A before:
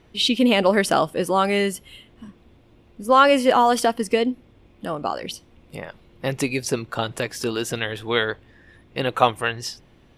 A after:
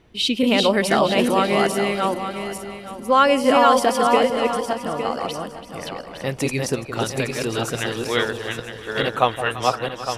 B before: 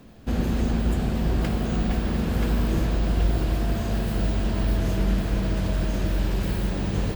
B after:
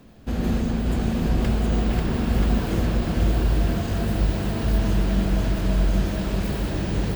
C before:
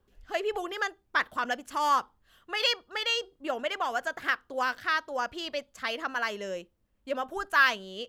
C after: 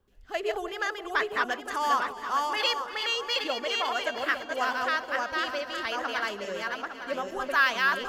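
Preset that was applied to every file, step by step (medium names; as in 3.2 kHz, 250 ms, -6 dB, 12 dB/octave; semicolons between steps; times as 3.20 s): backward echo that repeats 430 ms, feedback 44%, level -2 dB; echo whose repeats swap between lows and highs 168 ms, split 860 Hz, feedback 65%, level -10.5 dB; trim -1 dB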